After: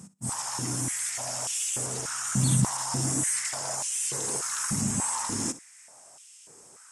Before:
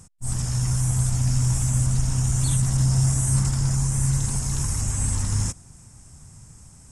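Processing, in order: flutter echo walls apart 10.7 m, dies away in 0.23 s; stepped high-pass 3.4 Hz 200–2900 Hz

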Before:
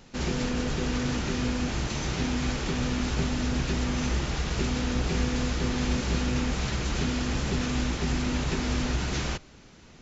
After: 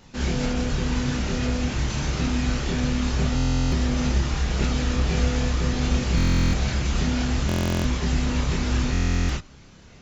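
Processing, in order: chorus voices 4, 0.26 Hz, delay 29 ms, depth 1 ms; stuck buffer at 3.35/6.16/7.47/8.92, samples 1024, times 15; gain +5 dB

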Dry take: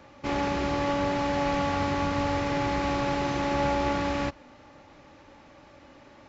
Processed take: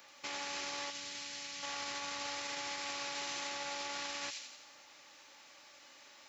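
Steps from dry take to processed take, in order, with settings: differentiator; thin delay 86 ms, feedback 54%, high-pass 3400 Hz, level -4 dB; limiter -40.5 dBFS, peak gain reduction 9.5 dB; 0.9–1.63 bell 780 Hz -12 dB 2.3 oct; gain +9 dB

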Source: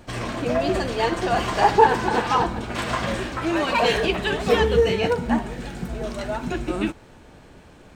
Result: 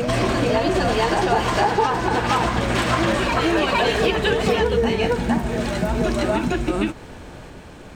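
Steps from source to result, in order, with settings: compressor, threshold -25 dBFS, peak gain reduction 15.5 dB; reverse echo 0.459 s -3.5 dB; gain +7.5 dB

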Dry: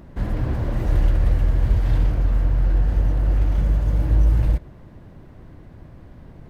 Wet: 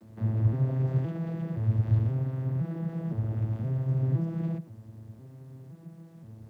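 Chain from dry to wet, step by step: arpeggiated vocoder minor triad, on A2, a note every 0.518 s; requantised 12-bit, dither none; gain +1.5 dB

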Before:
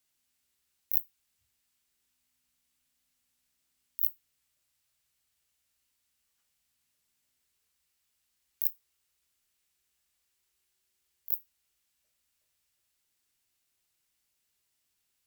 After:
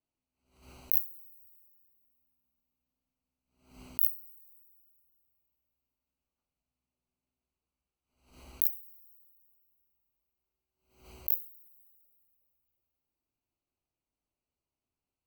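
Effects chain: Wiener smoothing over 25 samples; two-slope reverb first 0.42 s, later 2.6 s, from -17 dB, DRR 8 dB; backwards sustainer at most 110 dB/s

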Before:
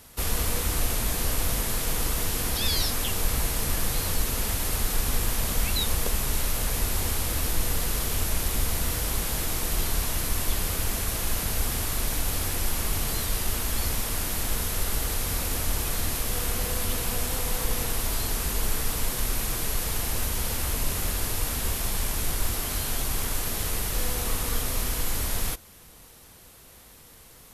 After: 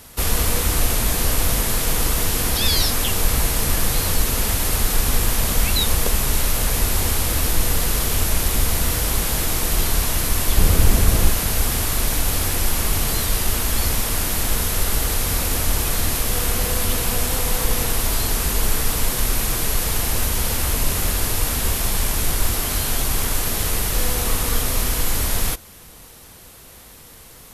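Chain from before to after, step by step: 10.57–11.3 low shelf 490 Hz +8.5 dB; gain +7 dB

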